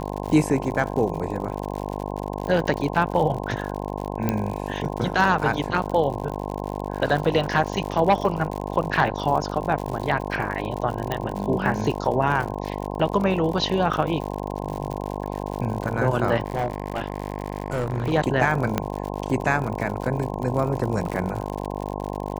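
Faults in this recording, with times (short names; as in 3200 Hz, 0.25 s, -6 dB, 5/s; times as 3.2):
buzz 50 Hz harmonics 21 -30 dBFS
crackle 85/s -29 dBFS
4.29 pop -9 dBFS
11.12 pop -11 dBFS
16.44–18.12 clipped -20 dBFS
18.78 pop -8 dBFS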